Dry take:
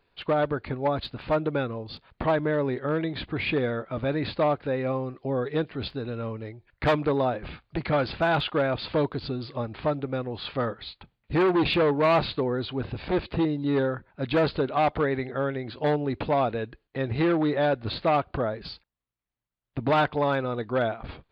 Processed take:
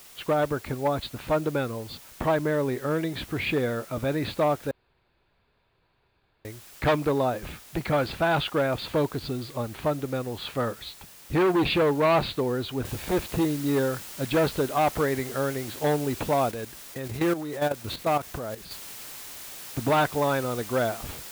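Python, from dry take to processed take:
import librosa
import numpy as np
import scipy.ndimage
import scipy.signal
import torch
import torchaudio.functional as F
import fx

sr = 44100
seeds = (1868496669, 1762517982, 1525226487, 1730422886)

y = fx.noise_floor_step(x, sr, seeds[0], at_s=12.85, before_db=-49, after_db=-41, tilt_db=0.0)
y = fx.level_steps(y, sr, step_db=11, at=(16.51, 18.71))
y = fx.edit(y, sr, fx.room_tone_fill(start_s=4.71, length_s=1.74), tone=tone)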